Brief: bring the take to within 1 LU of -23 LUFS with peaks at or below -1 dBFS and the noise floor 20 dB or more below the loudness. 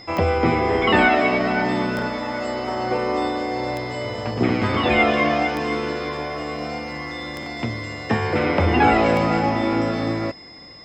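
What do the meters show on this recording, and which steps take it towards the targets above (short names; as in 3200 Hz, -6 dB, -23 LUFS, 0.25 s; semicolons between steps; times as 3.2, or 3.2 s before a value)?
clicks 6; steady tone 5100 Hz; tone level -42 dBFS; loudness -21.5 LUFS; peak -3.5 dBFS; loudness target -23.0 LUFS
-> de-click; notch 5100 Hz, Q 30; gain -1.5 dB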